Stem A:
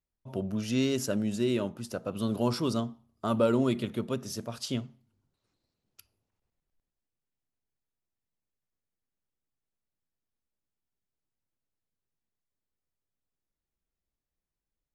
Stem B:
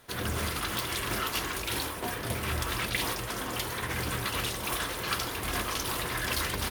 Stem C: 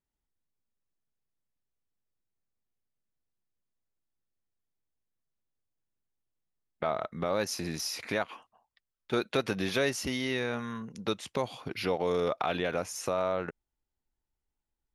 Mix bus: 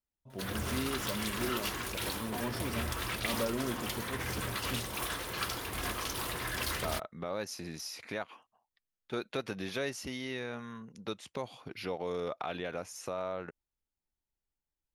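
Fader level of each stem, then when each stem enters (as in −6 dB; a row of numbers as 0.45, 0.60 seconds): −9.5, −4.5, −7.0 decibels; 0.00, 0.30, 0.00 seconds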